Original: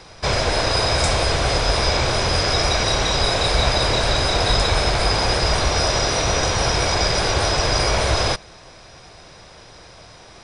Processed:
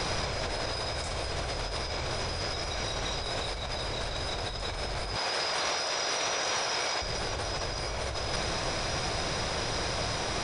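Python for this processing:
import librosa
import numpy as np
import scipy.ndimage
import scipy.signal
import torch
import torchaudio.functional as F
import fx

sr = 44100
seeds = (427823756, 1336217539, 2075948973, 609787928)

y = fx.weighting(x, sr, curve='A', at=(5.16, 7.02))
y = fx.over_compress(y, sr, threshold_db=-32.0, ratio=-1.0)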